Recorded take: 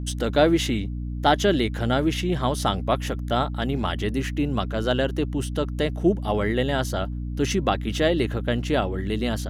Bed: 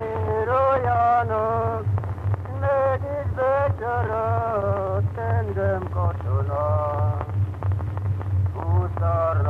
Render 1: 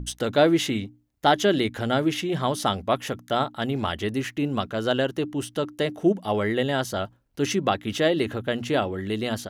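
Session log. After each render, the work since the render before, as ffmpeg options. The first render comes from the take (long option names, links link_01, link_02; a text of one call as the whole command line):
ffmpeg -i in.wav -af "bandreject=frequency=60:width_type=h:width=6,bandreject=frequency=120:width_type=h:width=6,bandreject=frequency=180:width_type=h:width=6,bandreject=frequency=240:width_type=h:width=6,bandreject=frequency=300:width_type=h:width=6" out.wav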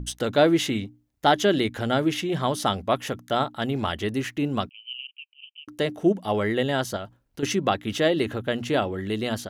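ffmpeg -i in.wav -filter_complex "[0:a]asettb=1/sr,asplit=3[link_01][link_02][link_03];[link_01]atrim=end=4.694[link_04];[link_02]atrim=start=4.69:end=5.68,asetpts=PTS-STARTPTS,afade=type=in:duration=0.004:curve=qsin,afade=type=out:start_time=0.986:duration=0.004:curve=qsin,asuperpass=centerf=2700:order=12:qfactor=3.4[link_05];[link_03]atrim=start=5.676[link_06];[link_04][link_05]acrossfade=duration=0.004:curve1=hsin:curve2=qsin[link_07];[link_07][link_06]acrossfade=duration=0.004:curve1=qsin:curve2=hsin,asettb=1/sr,asplit=3[link_08][link_09][link_10];[link_08]atrim=end=6.964[link_11];[link_09]atrim=start=6.96:end=7.43,asetpts=PTS-STARTPTS,afade=type=in:duration=0.004:curve=qsin,afade=type=out:start_time=0.466:duration=0.004:curve=qsin,acompressor=threshold=-29dB:ratio=6:attack=3.2:release=140:knee=1:detection=peak[link_12];[link_10]atrim=start=7.426[link_13];[link_11][link_12]acrossfade=duration=0.004:curve1=hsin:curve2=qsin[link_14];[link_14][link_13]acrossfade=duration=0.004:curve1=qsin:curve2=hsin" out.wav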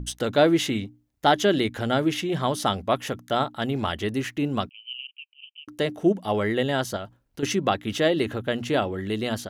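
ffmpeg -i in.wav -af anull out.wav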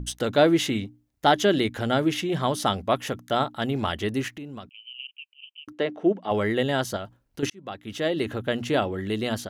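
ffmpeg -i in.wav -filter_complex "[0:a]asettb=1/sr,asplit=3[link_01][link_02][link_03];[link_01]atrim=end=4.284[link_04];[link_02]atrim=start=4.28:end=5,asetpts=PTS-STARTPTS,afade=type=in:duration=0.004:curve=qsin,afade=type=out:start_time=0.716:duration=0.004:curve=qsin,acompressor=threshold=-39dB:ratio=3:attack=3.2:release=140:knee=1:detection=peak[link_05];[link_03]atrim=start=4.996[link_06];[link_04][link_05]acrossfade=duration=0.004:curve1=hsin:curve2=qsin[link_07];[link_07][link_06]acrossfade=duration=0.004:curve1=qsin:curve2=hsin,asplit=3[link_08][link_09][link_10];[link_08]afade=type=out:start_time=5.72:duration=0.02[link_11];[link_09]highpass=240,lowpass=2900,afade=type=in:start_time=5.72:duration=0.02,afade=type=out:start_time=6.3:duration=0.02[link_12];[link_10]afade=type=in:start_time=6.3:duration=0.02[link_13];[link_11][link_12][link_13]amix=inputs=3:normalize=0,asplit=2[link_14][link_15];[link_14]atrim=end=7.5,asetpts=PTS-STARTPTS,afade=type=out:start_time=7.496:duration=0.004:curve=hsin[link_16];[link_15]atrim=start=7.5,asetpts=PTS-STARTPTS,afade=type=in:duration=0.93[link_17];[link_16][link_17]concat=n=2:v=0:a=1" out.wav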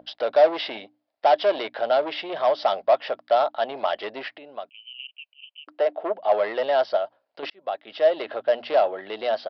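ffmpeg -i in.wav -af "aresample=11025,asoftclip=type=tanh:threshold=-21.5dB,aresample=44100,highpass=frequency=630:width_type=q:width=4.9" out.wav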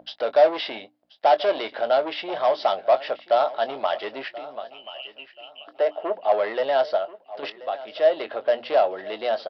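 ffmpeg -i in.wav -filter_complex "[0:a]asplit=2[link_01][link_02];[link_02]adelay=22,volume=-13dB[link_03];[link_01][link_03]amix=inputs=2:normalize=0,aecho=1:1:1032|2064|3096:0.133|0.0413|0.0128" out.wav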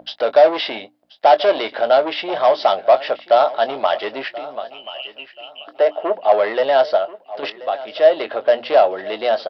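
ffmpeg -i in.wav -af "volume=6.5dB,alimiter=limit=-2dB:level=0:latency=1" out.wav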